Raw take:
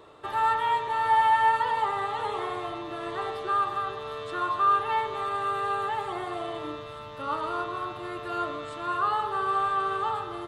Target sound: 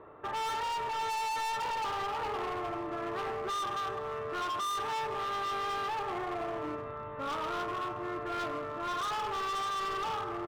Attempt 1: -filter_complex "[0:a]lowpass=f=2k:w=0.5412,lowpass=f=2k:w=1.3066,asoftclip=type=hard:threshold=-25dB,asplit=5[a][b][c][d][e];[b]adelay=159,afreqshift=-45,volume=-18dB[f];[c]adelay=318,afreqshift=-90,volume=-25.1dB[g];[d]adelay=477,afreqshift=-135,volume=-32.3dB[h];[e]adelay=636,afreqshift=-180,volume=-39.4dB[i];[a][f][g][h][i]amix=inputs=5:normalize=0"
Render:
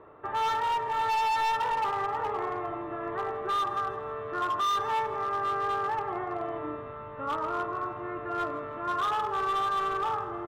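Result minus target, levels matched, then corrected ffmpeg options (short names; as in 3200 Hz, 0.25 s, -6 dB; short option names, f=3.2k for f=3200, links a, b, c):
hard clip: distortion -5 dB
-filter_complex "[0:a]lowpass=f=2k:w=0.5412,lowpass=f=2k:w=1.3066,asoftclip=type=hard:threshold=-32.5dB,asplit=5[a][b][c][d][e];[b]adelay=159,afreqshift=-45,volume=-18dB[f];[c]adelay=318,afreqshift=-90,volume=-25.1dB[g];[d]adelay=477,afreqshift=-135,volume=-32.3dB[h];[e]adelay=636,afreqshift=-180,volume=-39.4dB[i];[a][f][g][h][i]amix=inputs=5:normalize=0"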